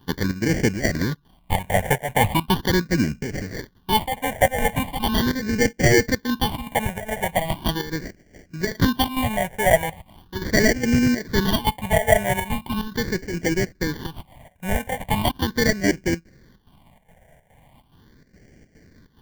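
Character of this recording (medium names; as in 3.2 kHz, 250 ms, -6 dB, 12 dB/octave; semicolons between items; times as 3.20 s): aliases and images of a low sample rate 1.3 kHz, jitter 0%; chopped level 2.4 Hz, depth 65%, duty 75%; phasing stages 6, 0.39 Hz, lowest notch 310–1000 Hz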